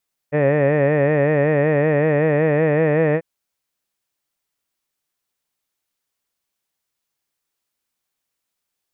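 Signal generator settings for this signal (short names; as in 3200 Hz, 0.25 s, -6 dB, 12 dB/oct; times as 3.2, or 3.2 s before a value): formant-synthesis vowel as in head, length 2.89 s, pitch 143 Hz, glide +1.5 st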